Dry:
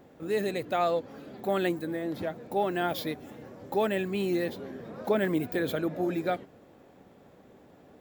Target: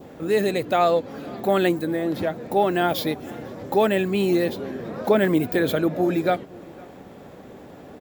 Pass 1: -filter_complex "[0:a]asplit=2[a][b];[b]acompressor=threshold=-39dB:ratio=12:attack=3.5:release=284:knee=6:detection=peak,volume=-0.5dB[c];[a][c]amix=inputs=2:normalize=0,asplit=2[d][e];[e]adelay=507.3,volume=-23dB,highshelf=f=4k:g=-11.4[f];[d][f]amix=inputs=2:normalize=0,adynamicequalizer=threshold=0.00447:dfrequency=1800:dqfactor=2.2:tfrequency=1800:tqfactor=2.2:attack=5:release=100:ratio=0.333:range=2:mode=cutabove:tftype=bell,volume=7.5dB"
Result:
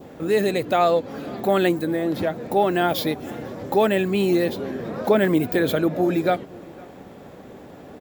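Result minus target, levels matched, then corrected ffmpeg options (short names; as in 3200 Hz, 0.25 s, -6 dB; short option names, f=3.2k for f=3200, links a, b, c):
compressor: peak gain reduction -9 dB
-filter_complex "[0:a]asplit=2[a][b];[b]acompressor=threshold=-49dB:ratio=12:attack=3.5:release=284:knee=6:detection=peak,volume=-0.5dB[c];[a][c]amix=inputs=2:normalize=0,asplit=2[d][e];[e]adelay=507.3,volume=-23dB,highshelf=f=4k:g=-11.4[f];[d][f]amix=inputs=2:normalize=0,adynamicequalizer=threshold=0.00447:dfrequency=1800:dqfactor=2.2:tfrequency=1800:tqfactor=2.2:attack=5:release=100:ratio=0.333:range=2:mode=cutabove:tftype=bell,volume=7.5dB"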